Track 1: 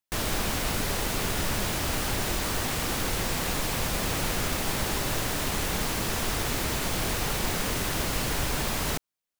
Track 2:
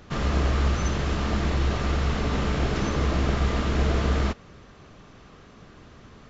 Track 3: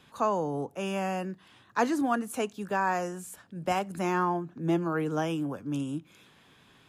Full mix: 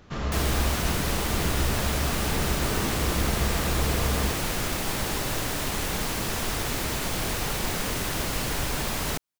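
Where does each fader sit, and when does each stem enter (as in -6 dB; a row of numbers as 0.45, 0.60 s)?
0.0, -4.0, -18.0 dB; 0.20, 0.00, 0.00 s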